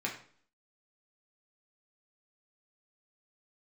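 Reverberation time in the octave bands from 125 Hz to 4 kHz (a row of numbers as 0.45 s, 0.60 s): 0.55 s, 0.60 s, 0.50 s, 0.50 s, 0.45 s, 0.45 s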